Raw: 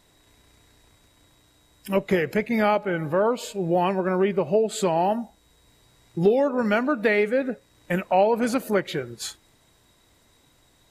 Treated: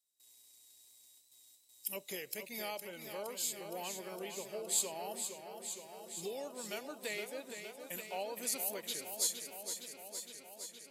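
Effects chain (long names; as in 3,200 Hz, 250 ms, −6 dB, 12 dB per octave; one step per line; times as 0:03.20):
parametric band 1,500 Hz −15 dB 1.4 octaves
noise gate with hold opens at −49 dBFS
first difference
feedback echo with a swinging delay time 464 ms, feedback 75%, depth 65 cents, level −8 dB
level +3 dB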